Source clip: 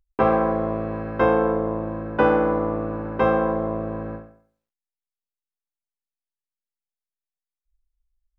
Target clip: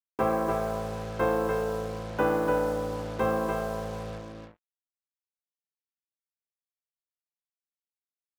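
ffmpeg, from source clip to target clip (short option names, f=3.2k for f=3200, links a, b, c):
-af "acrusher=bits=5:mix=0:aa=0.5,aecho=1:1:293:0.596,volume=-7.5dB"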